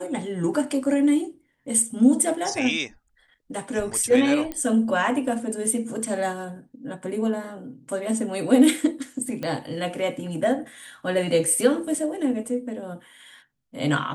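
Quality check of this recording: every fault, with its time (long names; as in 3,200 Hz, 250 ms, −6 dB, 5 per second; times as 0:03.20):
0:04.52: click −16 dBFS
0:09.43: click −17 dBFS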